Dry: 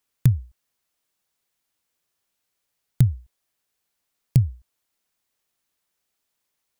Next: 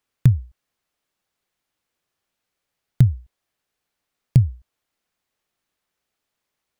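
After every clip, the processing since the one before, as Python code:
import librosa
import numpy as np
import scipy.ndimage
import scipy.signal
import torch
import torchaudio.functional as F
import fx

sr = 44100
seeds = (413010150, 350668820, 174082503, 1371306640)

y = fx.high_shelf(x, sr, hz=4900.0, db=-10.0)
y = fx.notch(y, sr, hz=970.0, q=29.0)
y = y * librosa.db_to_amplitude(3.0)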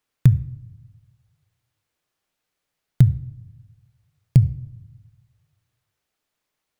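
y = fx.room_shoebox(x, sr, seeds[0], volume_m3=2600.0, walls='furnished', distance_m=0.49)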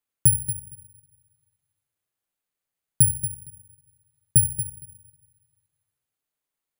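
y = fx.echo_feedback(x, sr, ms=231, feedback_pct=17, wet_db=-11.0)
y = (np.kron(scipy.signal.resample_poly(y, 1, 4), np.eye(4)[0]) * 4)[:len(y)]
y = y * librosa.db_to_amplitude(-10.5)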